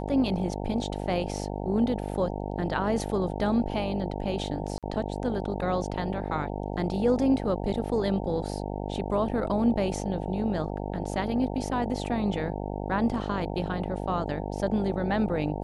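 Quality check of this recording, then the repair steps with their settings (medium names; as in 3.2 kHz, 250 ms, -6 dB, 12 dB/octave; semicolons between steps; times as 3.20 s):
buzz 50 Hz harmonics 18 -33 dBFS
4.78–4.83 s: dropout 47 ms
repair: de-hum 50 Hz, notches 18; interpolate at 4.78 s, 47 ms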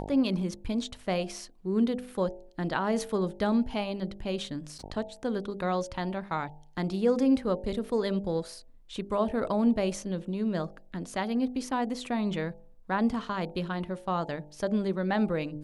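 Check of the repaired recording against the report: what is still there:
nothing left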